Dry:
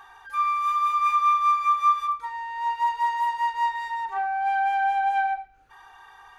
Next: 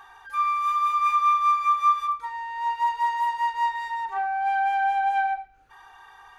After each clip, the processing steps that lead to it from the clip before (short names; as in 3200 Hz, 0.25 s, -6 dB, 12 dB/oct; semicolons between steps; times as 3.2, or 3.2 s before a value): nothing audible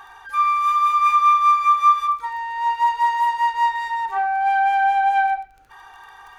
crackle 21/s -44 dBFS; gain +5.5 dB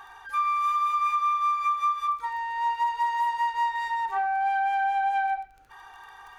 compressor, threshold -19 dBFS, peak gain reduction 9 dB; gain -3.5 dB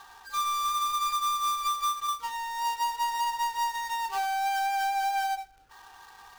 switching dead time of 0.14 ms; gain -2.5 dB